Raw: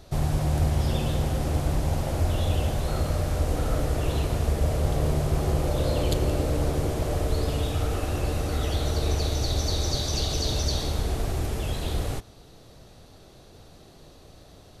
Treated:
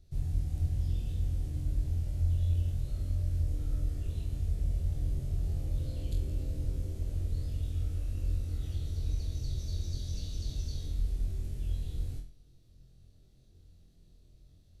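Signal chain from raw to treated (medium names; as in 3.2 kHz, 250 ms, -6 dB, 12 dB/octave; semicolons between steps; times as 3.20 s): amplifier tone stack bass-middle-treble 10-0-1; on a send: flutter echo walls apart 4 m, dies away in 0.38 s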